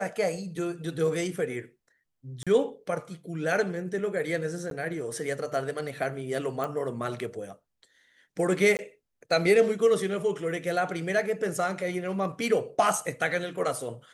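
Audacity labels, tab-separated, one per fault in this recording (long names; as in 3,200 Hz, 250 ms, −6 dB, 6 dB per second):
2.430000	2.470000	drop-out 36 ms
4.700000	4.710000	drop-out
6.640000	6.640000	click
8.770000	8.790000	drop-out 19 ms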